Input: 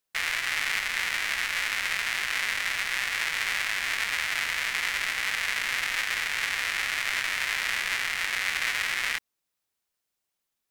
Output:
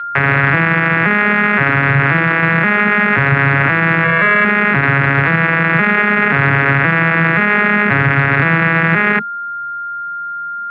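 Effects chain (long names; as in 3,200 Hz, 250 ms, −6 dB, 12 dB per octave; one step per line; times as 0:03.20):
vocoder with an arpeggio as carrier minor triad, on C#3, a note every 526 ms
low-pass filter 1,900 Hz 24 dB per octave
low-shelf EQ 220 Hz +11.5 dB
0:04.04–0:04.45: comb filter 1.8 ms, depth 75%
dynamic equaliser 970 Hz, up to −5 dB, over −45 dBFS, Q 0.71
steady tone 1,400 Hz −47 dBFS
boost into a limiter +28.5 dB
level −2 dB
G.722 64 kbit/s 16,000 Hz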